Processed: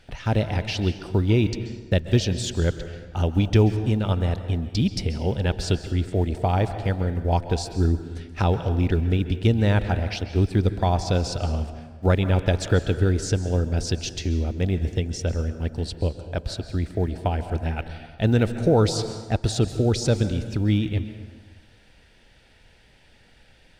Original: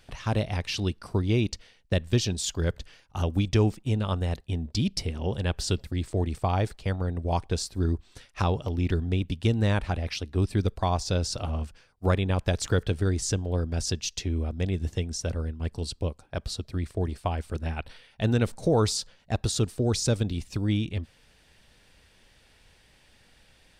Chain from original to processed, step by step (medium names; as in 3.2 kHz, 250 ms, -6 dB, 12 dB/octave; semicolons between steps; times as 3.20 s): block-companded coder 7-bit; treble shelf 6 kHz -11.5 dB; band-stop 1.1 kHz, Q 5.1; on a send: reverberation RT60 1.4 s, pre-delay 123 ms, DRR 10 dB; on the sum: trim +4.5 dB